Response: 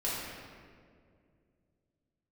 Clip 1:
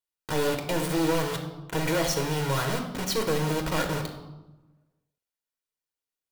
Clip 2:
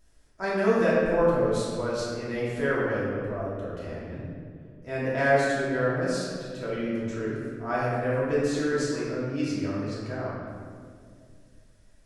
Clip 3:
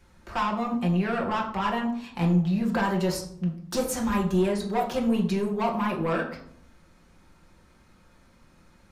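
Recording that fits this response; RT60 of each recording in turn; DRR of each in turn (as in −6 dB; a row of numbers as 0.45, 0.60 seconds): 2; 1.1, 2.2, 0.65 seconds; 2.5, −8.5, −1.5 decibels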